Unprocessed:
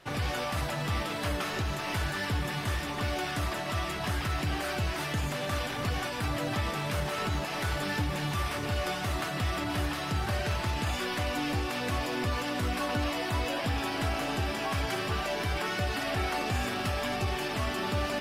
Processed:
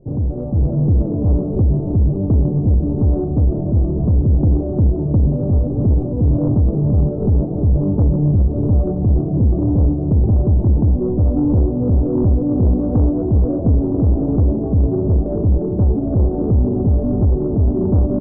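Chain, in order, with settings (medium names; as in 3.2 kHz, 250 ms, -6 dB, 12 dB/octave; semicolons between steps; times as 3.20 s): rattle on loud lows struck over -38 dBFS, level -29 dBFS; inverse Chebyshev low-pass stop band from 1.6 kHz, stop band 60 dB; tilt EQ -2 dB/octave; in parallel at -11 dB: sine folder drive 9 dB, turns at -15.5 dBFS; on the sum: delay 971 ms -14.5 dB; level rider gain up to 5.5 dB; trim +3 dB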